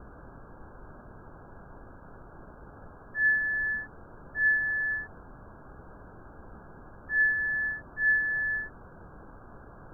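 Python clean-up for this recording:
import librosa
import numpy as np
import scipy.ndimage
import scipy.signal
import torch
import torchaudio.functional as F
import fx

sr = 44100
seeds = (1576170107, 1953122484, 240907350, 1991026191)

y = fx.noise_reduce(x, sr, print_start_s=9.3, print_end_s=9.8, reduce_db=26.0)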